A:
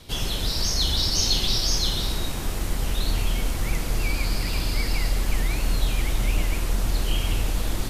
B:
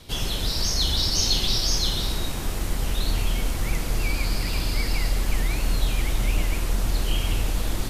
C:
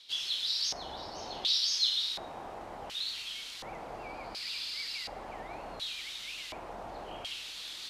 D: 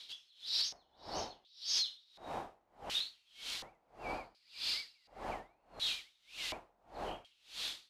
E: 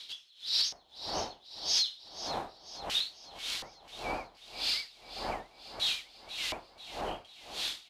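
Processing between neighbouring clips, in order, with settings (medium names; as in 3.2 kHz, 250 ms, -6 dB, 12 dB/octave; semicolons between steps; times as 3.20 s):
no audible change
LFO band-pass square 0.69 Hz 760–3800 Hz
peak limiter -26.5 dBFS, peak gain reduction 10 dB; logarithmic tremolo 1.7 Hz, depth 36 dB; trim +3.5 dB
feedback delay 490 ms, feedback 48%, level -13 dB; trim +5.5 dB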